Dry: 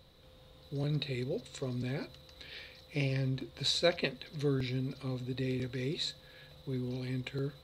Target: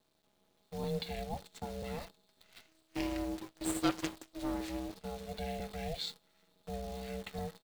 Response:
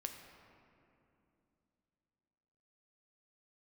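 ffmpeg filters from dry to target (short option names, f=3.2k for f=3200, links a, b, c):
-filter_complex "[0:a]agate=range=-9dB:threshold=-45dB:ratio=16:detection=peak,aecho=1:1:5.6:0.39,asettb=1/sr,asplit=3[a][b][c];[a]atrim=end=2.684[d];[b]atrim=start=2.68:end=4.94,asetpts=PTS-STARTPTS,afade=t=in:d=0.004:c=qsin,afade=t=out:st=2.256:d=0.004:c=qsin,aeval=exprs='abs(val(0))':c=same[e];[c]atrim=start=4.936[f];[d][e]acrossfade=d=0.004:c1=hsin:c2=qsin[g];[g][f]acrossfade=d=0.004:c1=qsin:c2=hsin,aeval=exprs='val(0)*sin(2*PI*320*n/s)':c=same,acrusher=bits=9:dc=4:mix=0:aa=0.000001,volume=-1.5dB"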